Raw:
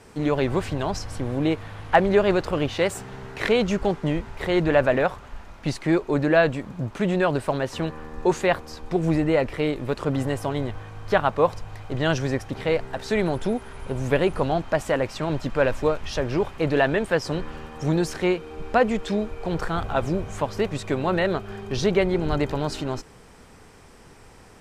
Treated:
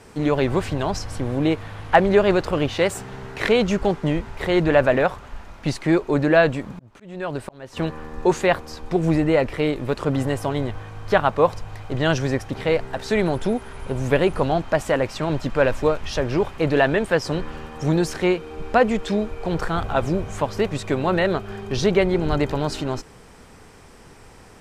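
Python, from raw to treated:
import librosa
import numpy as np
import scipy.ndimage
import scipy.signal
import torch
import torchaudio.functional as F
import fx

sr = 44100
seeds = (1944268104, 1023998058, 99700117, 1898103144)

y = fx.auto_swell(x, sr, attack_ms=736.0, at=(6.71, 7.77))
y = y * 10.0 ** (2.5 / 20.0)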